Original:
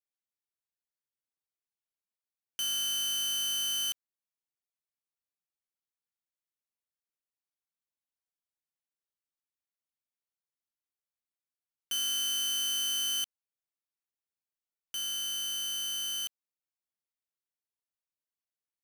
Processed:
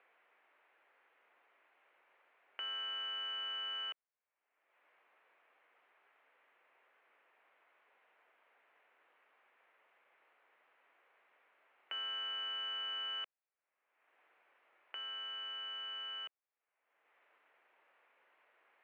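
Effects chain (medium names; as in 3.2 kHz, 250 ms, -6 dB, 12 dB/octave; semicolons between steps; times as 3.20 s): upward compressor, threshold -41 dBFS; mistuned SSB -74 Hz 520–2500 Hz; trim +3 dB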